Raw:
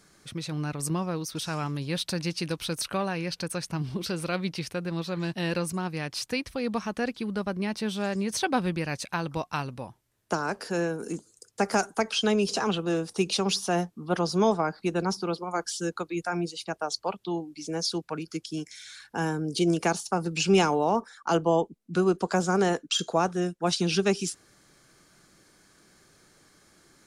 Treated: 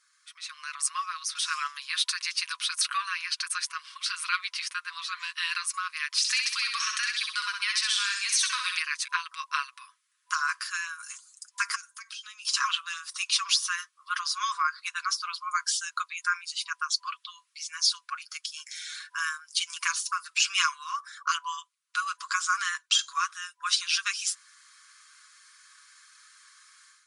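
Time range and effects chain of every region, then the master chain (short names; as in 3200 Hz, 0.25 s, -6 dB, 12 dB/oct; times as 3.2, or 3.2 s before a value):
6.18–8.82 weighting filter ITU-R 468 + compressor 4:1, threshold -28 dBFS + feedback echo 64 ms, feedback 42%, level -5 dB
11.75–12.45 passive tone stack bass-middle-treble 5-5-5 + compressor 16:1, threshold -42 dBFS
whole clip: FFT band-pass 1000–11000 Hz; comb 6.3 ms, depth 54%; AGC gain up to 12.5 dB; gain -7.5 dB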